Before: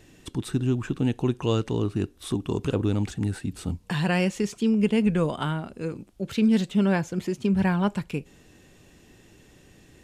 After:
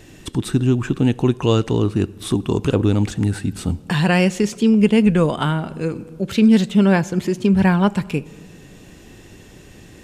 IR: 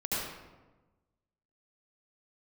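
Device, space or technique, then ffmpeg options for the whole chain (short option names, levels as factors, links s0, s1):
ducked reverb: -filter_complex "[0:a]asplit=3[s0][s1][s2];[1:a]atrim=start_sample=2205[s3];[s1][s3]afir=irnorm=-1:irlink=0[s4];[s2]apad=whole_len=442524[s5];[s4][s5]sidechaincompress=threshold=0.0126:ratio=12:attack=6.8:release=648,volume=0.282[s6];[s0][s6]amix=inputs=2:normalize=0,volume=2.37"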